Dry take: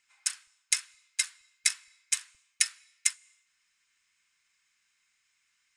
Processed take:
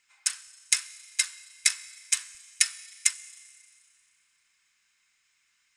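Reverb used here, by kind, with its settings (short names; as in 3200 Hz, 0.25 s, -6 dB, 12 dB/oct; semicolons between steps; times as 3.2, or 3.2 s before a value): Schroeder reverb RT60 2.3 s, combs from 30 ms, DRR 17 dB; gain +3 dB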